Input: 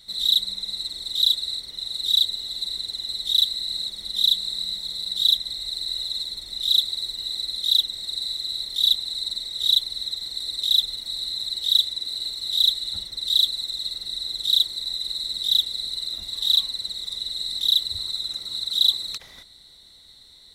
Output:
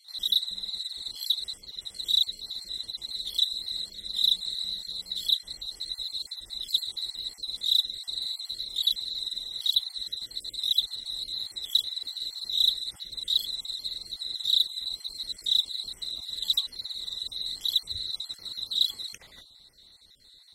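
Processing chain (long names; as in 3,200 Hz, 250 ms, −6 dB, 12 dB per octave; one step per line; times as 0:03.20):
time-frequency cells dropped at random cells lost 33%
level −4 dB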